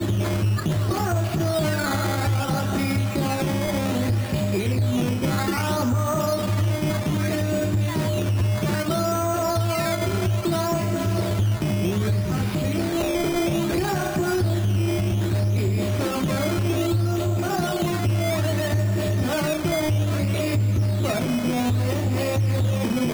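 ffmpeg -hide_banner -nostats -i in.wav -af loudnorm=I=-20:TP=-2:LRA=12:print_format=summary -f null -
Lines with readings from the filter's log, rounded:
Input Integrated:    -23.2 LUFS
Input True Peak:     -14.7 dBTP
Input LRA:             0.6 LU
Input Threshold:     -33.2 LUFS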